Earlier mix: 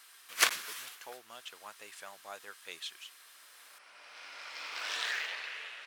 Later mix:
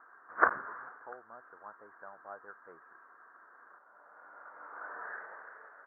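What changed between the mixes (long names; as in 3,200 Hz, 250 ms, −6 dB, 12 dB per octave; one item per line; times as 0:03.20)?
first sound +8.5 dB
master: add Butterworth low-pass 1,600 Hz 72 dB per octave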